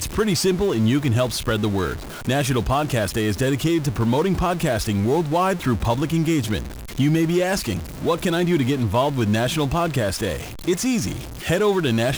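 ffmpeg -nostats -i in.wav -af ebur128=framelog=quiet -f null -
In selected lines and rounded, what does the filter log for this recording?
Integrated loudness:
  I:         -21.5 LUFS
  Threshold: -31.5 LUFS
Loudness range:
  LRA:         0.8 LU
  Threshold: -41.5 LUFS
  LRA low:   -21.9 LUFS
  LRA high:  -21.1 LUFS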